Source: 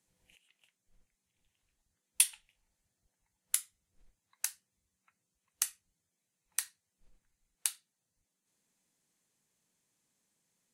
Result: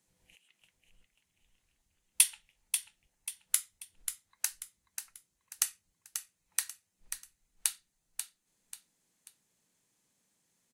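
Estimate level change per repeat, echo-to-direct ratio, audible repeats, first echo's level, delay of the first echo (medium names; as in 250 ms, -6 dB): -8.5 dB, -7.5 dB, 3, -8.0 dB, 538 ms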